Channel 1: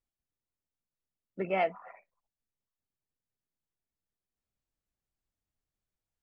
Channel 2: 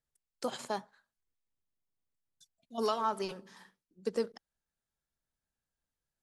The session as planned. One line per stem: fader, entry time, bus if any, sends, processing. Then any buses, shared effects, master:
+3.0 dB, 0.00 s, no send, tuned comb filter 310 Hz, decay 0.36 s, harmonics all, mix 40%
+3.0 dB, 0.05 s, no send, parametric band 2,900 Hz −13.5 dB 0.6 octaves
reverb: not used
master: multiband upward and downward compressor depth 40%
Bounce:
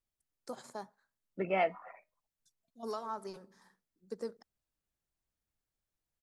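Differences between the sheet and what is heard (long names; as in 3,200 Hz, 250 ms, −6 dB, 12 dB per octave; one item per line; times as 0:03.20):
stem 2 +3.0 dB → −7.5 dB
master: missing multiband upward and downward compressor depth 40%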